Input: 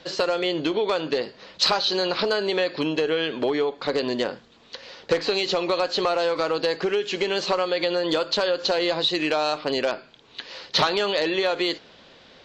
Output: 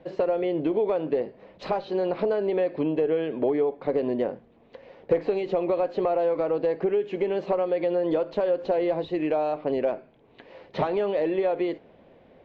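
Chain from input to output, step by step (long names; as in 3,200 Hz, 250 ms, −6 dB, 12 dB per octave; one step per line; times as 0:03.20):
drawn EQ curve 690 Hz 0 dB, 1,400 Hz −14 dB, 2,200 Hz −10 dB, 4,500 Hz −29 dB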